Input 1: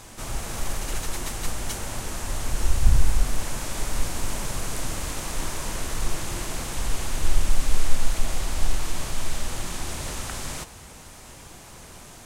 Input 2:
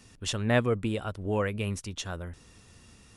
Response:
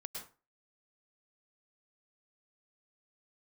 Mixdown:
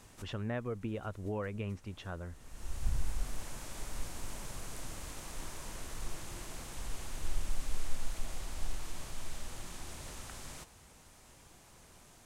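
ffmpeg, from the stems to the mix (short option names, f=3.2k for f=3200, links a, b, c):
-filter_complex "[0:a]volume=-14dB[a];[1:a]lowpass=2.2k,acompressor=threshold=-28dB:ratio=6,volume=-5dB,asplit=2[b][c];[c]apad=whole_len=540647[d];[a][d]sidechaincompress=threshold=-57dB:ratio=8:attack=36:release=475[e];[e][b]amix=inputs=2:normalize=0"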